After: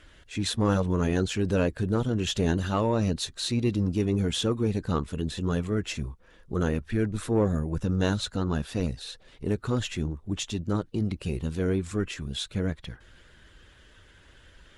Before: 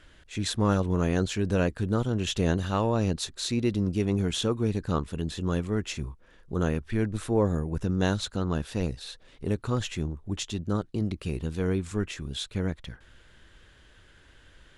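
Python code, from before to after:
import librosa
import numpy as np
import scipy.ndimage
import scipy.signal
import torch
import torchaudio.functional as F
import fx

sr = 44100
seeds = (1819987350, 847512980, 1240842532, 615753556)

y = fx.spec_quant(x, sr, step_db=15)
y = fx.cheby_harmonics(y, sr, harmonics=(5,), levels_db=(-27,), full_scale_db=-12.0)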